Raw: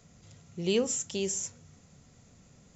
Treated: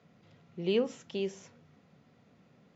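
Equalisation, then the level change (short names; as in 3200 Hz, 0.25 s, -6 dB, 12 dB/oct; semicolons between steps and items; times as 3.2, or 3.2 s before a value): BPF 180–4600 Hz; air absorption 190 m; 0.0 dB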